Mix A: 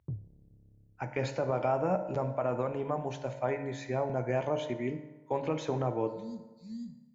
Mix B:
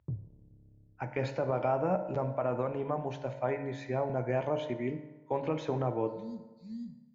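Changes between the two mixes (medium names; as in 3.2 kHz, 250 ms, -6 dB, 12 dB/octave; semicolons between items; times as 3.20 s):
speech: add distance through air 110 m; background: send +9.0 dB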